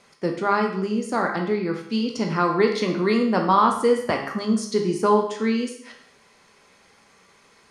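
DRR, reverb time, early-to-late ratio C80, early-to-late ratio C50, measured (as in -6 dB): 2.0 dB, 0.70 s, 9.5 dB, 6.5 dB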